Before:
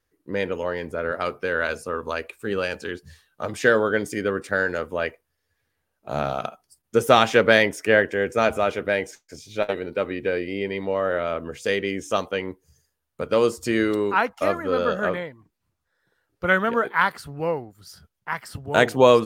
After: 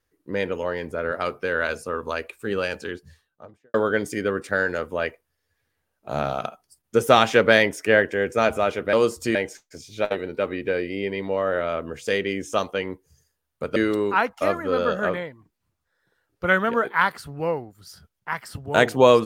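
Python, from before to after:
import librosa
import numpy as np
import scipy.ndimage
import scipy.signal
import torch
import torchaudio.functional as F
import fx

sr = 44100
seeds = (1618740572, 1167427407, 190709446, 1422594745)

y = fx.studio_fade_out(x, sr, start_s=2.75, length_s=0.99)
y = fx.edit(y, sr, fx.move(start_s=13.34, length_s=0.42, to_s=8.93), tone=tone)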